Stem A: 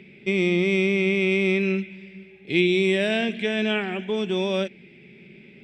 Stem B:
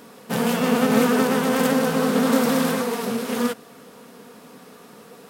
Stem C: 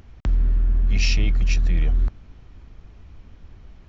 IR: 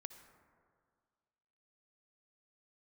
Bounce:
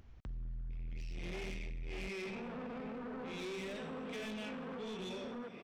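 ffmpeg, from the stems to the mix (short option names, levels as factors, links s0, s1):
-filter_complex "[0:a]equalizer=f=6000:t=o:w=1:g=7.5,tremolo=f=1.4:d=0.99,flanger=delay=22.5:depth=7.1:speed=0.92,adelay=700,volume=1,asplit=2[s0][s1];[s1]volume=0.158[s2];[1:a]lowpass=1700,acompressor=mode=upward:threshold=0.0708:ratio=2.5,alimiter=limit=0.126:level=0:latency=1:release=120,adelay=1950,volume=0.355[s3];[2:a]deesser=0.8,volume=0.251[s4];[s0][s3]amix=inputs=2:normalize=0,acompressor=threshold=0.0501:ratio=6,volume=1[s5];[s2]aecho=0:1:85|170|255|340|425|510|595|680|765:1|0.57|0.325|0.185|0.106|0.0602|0.0343|0.0195|0.0111[s6];[s4][s5][s6]amix=inputs=3:normalize=0,asoftclip=type=tanh:threshold=0.0237,alimiter=level_in=5.96:limit=0.0631:level=0:latency=1:release=31,volume=0.168"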